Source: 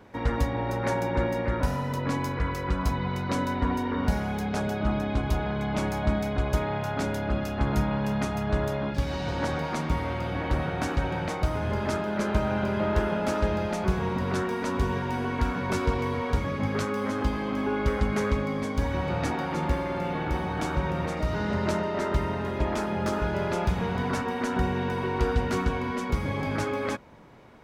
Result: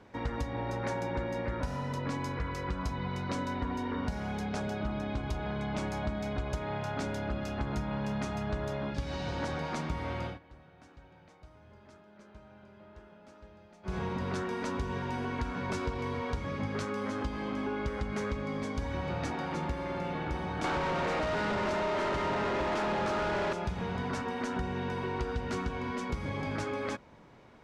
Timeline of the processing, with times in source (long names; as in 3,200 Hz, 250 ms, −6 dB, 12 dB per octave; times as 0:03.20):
0:10.25–0:13.97: duck −23.5 dB, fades 0.14 s
0:20.64–0:23.53: mid-hump overdrive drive 33 dB, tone 1,400 Hz, clips at −12.5 dBFS
whole clip: low-pass filter 7,100 Hz 12 dB per octave; high-shelf EQ 5,300 Hz +5.5 dB; downward compressor, threshold −25 dBFS; level −4.5 dB